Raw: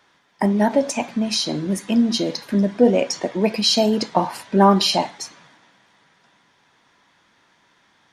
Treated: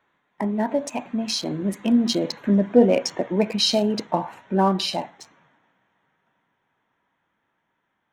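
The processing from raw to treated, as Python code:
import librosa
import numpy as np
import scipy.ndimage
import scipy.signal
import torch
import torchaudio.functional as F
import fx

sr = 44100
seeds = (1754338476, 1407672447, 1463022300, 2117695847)

y = fx.wiener(x, sr, points=9)
y = fx.doppler_pass(y, sr, speed_mps=10, closest_m=12.0, pass_at_s=2.59)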